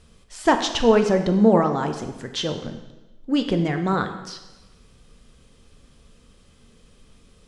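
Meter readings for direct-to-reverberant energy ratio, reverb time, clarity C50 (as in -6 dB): 6.0 dB, 1.1 s, 8.5 dB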